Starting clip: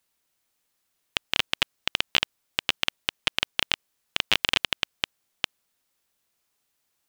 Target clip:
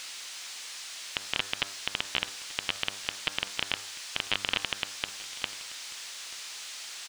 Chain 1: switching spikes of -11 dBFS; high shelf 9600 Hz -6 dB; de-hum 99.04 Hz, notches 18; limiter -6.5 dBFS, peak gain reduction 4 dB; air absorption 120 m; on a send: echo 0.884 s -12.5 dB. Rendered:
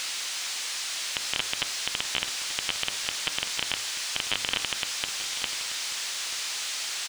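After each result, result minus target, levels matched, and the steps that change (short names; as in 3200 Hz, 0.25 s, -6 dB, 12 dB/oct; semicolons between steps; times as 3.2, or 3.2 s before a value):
switching spikes: distortion +9 dB; echo-to-direct +6.5 dB
change: switching spikes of -20 dBFS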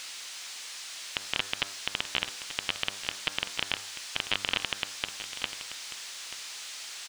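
echo-to-direct +6.5 dB
change: echo 0.884 s -19 dB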